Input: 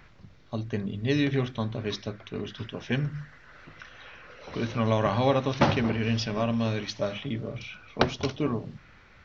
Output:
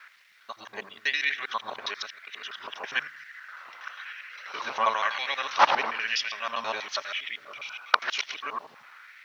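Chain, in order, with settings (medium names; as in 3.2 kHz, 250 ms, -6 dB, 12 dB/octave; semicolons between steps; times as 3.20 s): time reversed locally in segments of 81 ms; word length cut 12-bit, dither none; LFO high-pass sine 1 Hz 890–2000 Hz; trim +3 dB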